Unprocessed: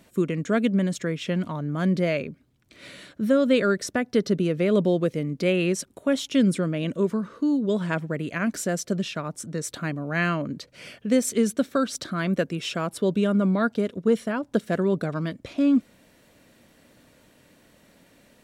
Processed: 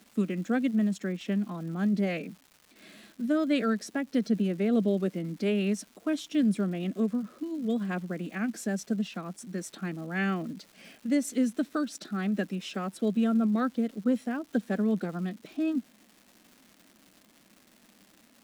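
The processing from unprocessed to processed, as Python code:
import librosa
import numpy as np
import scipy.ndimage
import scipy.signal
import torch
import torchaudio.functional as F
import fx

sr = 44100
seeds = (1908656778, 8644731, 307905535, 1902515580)

y = fx.low_shelf_res(x, sr, hz=120.0, db=-13.5, q=3.0)
y = fx.pitch_keep_formants(y, sr, semitones=2.0)
y = fx.dmg_crackle(y, sr, seeds[0], per_s=450.0, level_db=-37.0)
y = y * librosa.db_to_amplitude(-8.5)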